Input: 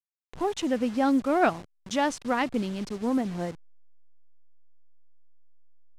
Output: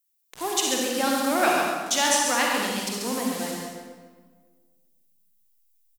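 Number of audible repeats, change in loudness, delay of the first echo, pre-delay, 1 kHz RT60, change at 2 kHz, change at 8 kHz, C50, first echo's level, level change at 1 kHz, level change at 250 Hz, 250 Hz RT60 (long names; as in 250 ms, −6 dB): 1, +3.5 dB, 137 ms, 39 ms, 1.4 s, +7.5 dB, +18.0 dB, −1.5 dB, −5.0 dB, +4.0 dB, −2.5 dB, 1.9 s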